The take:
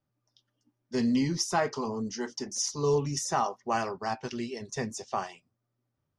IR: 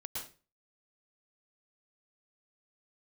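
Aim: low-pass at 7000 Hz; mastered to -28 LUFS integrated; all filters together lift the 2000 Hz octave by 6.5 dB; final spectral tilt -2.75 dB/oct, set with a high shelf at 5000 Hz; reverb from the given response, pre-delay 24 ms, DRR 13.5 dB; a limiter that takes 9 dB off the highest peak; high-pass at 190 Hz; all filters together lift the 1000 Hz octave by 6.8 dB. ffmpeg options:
-filter_complex "[0:a]highpass=190,lowpass=7k,equalizer=f=1k:t=o:g=7.5,equalizer=f=2k:t=o:g=4.5,highshelf=f=5k:g=7,alimiter=limit=-17.5dB:level=0:latency=1,asplit=2[a][b];[1:a]atrim=start_sample=2205,adelay=24[c];[b][c]afir=irnorm=-1:irlink=0,volume=-13dB[d];[a][d]amix=inputs=2:normalize=0,volume=2dB"

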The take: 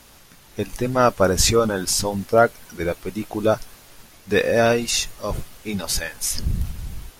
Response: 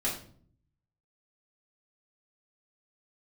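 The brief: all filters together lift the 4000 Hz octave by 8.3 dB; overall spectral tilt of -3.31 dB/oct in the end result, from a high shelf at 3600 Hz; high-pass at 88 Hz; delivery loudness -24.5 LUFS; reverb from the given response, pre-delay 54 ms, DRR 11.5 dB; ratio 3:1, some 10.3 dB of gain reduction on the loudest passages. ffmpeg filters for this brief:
-filter_complex "[0:a]highpass=88,highshelf=f=3.6k:g=8.5,equalizer=f=4k:t=o:g=4,acompressor=threshold=-22dB:ratio=3,asplit=2[a][b];[1:a]atrim=start_sample=2205,adelay=54[c];[b][c]afir=irnorm=-1:irlink=0,volume=-18dB[d];[a][d]amix=inputs=2:normalize=0"

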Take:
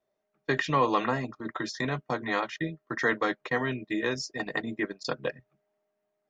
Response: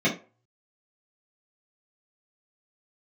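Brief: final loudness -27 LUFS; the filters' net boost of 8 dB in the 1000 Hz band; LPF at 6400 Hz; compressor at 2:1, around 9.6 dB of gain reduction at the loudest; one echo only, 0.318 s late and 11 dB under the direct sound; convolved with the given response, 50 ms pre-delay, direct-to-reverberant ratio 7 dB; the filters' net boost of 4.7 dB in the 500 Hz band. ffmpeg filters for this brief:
-filter_complex "[0:a]lowpass=6.4k,equalizer=f=500:t=o:g=3.5,equalizer=f=1k:t=o:g=8.5,acompressor=threshold=-31dB:ratio=2,aecho=1:1:318:0.282,asplit=2[a][b];[1:a]atrim=start_sample=2205,adelay=50[c];[b][c]afir=irnorm=-1:irlink=0,volume=-22dB[d];[a][d]amix=inputs=2:normalize=0,volume=4dB"

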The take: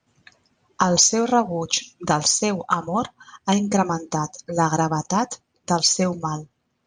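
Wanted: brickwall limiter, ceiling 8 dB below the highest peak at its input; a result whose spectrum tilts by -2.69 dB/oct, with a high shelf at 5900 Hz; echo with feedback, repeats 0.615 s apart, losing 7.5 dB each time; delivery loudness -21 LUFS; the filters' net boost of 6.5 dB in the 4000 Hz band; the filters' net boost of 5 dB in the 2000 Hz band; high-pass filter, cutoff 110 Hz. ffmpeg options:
-af "highpass=110,equalizer=f=2k:t=o:g=5.5,equalizer=f=4k:t=o:g=5,highshelf=f=5.9k:g=5.5,alimiter=limit=-7dB:level=0:latency=1,aecho=1:1:615|1230|1845|2460|3075:0.422|0.177|0.0744|0.0312|0.0131,volume=-0.5dB"

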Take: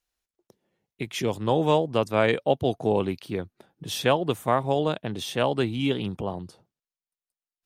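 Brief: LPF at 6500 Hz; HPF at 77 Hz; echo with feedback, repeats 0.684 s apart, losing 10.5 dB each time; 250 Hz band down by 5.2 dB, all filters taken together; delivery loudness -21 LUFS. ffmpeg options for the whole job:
-af "highpass=77,lowpass=6.5k,equalizer=f=250:t=o:g=-7,aecho=1:1:684|1368|2052:0.299|0.0896|0.0269,volume=6.5dB"

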